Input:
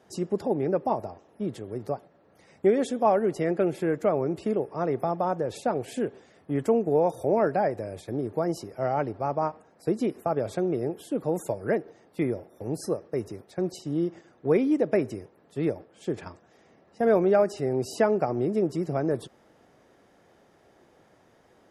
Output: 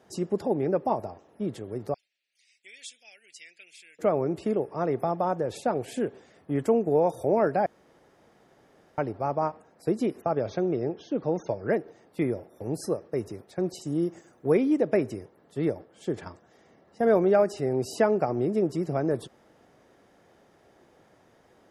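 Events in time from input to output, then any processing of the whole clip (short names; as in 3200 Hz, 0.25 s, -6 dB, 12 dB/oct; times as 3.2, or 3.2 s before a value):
1.94–3.99 elliptic band-pass 2400–9300 Hz
7.66–8.98 room tone
10.21–11.71 brick-wall FIR low-pass 6600 Hz
13.81–14.55 resonant high shelf 5600 Hz +8.5 dB, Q 1.5
15.17–17.3 notch 2500 Hz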